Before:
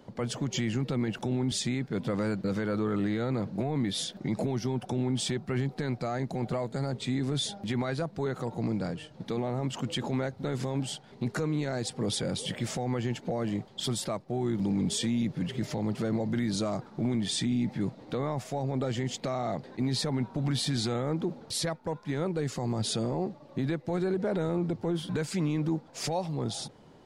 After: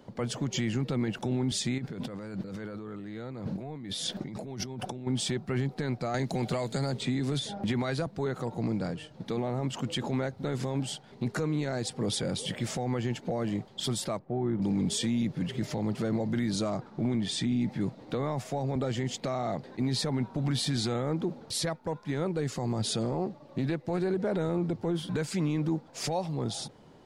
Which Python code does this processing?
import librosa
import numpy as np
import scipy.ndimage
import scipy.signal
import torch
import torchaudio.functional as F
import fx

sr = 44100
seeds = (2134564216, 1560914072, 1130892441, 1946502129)

y = fx.over_compress(x, sr, threshold_db=-38.0, ratio=-1.0, at=(1.78, 5.07))
y = fx.band_squash(y, sr, depth_pct=100, at=(6.14, 8.07))
y = fx.lowpass(y, sr, hz=1700.0, slope=12, at=(14.19, 14.62))
y = fx.high_shelf(y, sr, hz=7700.0, db=-8.0, at=(16.7, 17.61))
y = fx.band_squash(y, sr, depth_pct=40, at=(18.11, 18.76))
y = fx.doppler_dist(y, sr, depth_ms=0.11, at=(23.01, 24.1))